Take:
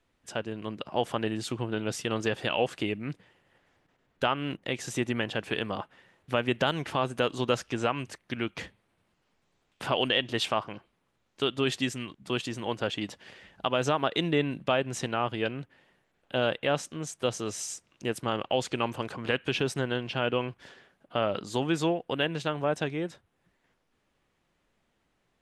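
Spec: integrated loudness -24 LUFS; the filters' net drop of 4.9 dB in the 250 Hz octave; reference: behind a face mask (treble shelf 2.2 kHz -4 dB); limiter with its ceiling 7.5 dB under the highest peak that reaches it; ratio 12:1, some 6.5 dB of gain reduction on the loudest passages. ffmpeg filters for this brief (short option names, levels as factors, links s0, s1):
-af "equalizer=f=250:t=o:g=-6.5,acompressor=threshold=0.0398:ratio=12,alimiter=limit=0.0794:level=0:latency=1,highshelf=f=2200:g=-4,volume=5.01"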